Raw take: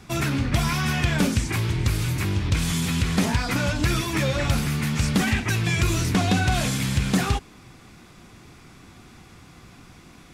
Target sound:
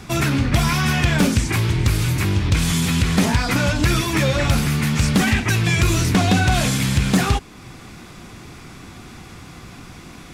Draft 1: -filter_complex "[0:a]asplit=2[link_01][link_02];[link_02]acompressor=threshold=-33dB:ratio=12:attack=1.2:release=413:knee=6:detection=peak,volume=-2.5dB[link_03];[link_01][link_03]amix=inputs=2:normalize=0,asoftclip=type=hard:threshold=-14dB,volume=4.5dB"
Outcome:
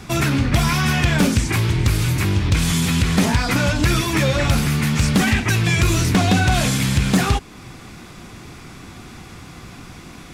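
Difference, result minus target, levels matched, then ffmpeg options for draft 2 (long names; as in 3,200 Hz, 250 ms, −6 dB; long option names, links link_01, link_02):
downward compressor: peak gain reduction −6.5 dB
-filter_complex "[0:a]asplit=2[link_01][link_02];[link_02]acompressor=threshold=-40dB:ratio=12:attack=1.2:release=413:knee=6:detection=peak,volume=-2.5dB[link_03];[link_01][link_03]amix=inputs=2:normalize=0,asoftclip=type=hard:threshold=-14dB,volume=4.5dB"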